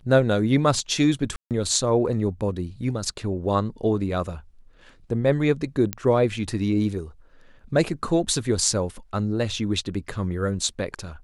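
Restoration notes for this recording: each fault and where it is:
1.36–1.51 gap 0.148 s
5.93 pop -9 dBFS

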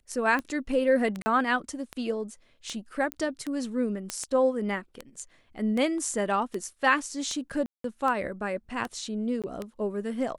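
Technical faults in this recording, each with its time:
tick 78 rpm -19 dBFS
1.22–1.26 gap 40 ms
3.12 pop -15 dBFS
4.1 pop -14 dBFS
7.66–7.84 gap 0.183 s
9.42–9.44 gap 17 ms

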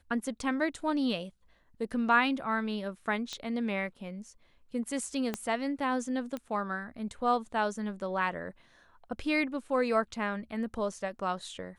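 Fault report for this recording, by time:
3.33 pop -23 dBFS
5.34 pop -17 dBFS
6.37 pop -24 dBFS

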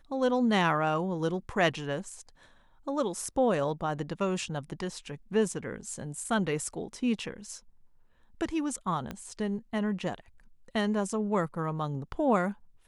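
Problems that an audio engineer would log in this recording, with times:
9.11 pop -22 dBFS

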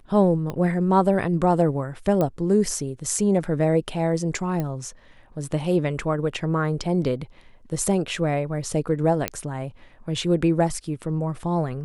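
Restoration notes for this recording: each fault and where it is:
0.5 pop -17 dBFS
2.21 pop -12 dBFS
4.6 pop -15 dBFS
9.28 pop -7 dBFS

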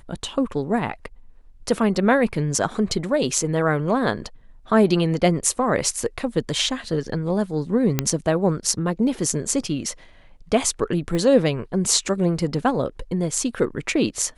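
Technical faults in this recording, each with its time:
7.99 pop -4 dBFS
11.15 pop -15 dBFS

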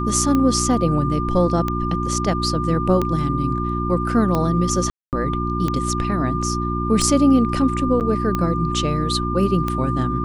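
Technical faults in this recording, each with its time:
hum 60 Hz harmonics 6 -24 dBFS
tick 45 rpm -9 dBFS
tone 1200 Hz -25 dBFS
4.9–5.13 gap 0.228 s
8–8.01 gap 8.6 ms

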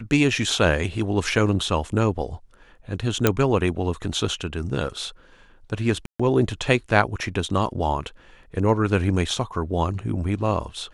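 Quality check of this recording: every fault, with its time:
3.27 pop -2 dBFS
6.06–6.2 gap 0.135 s

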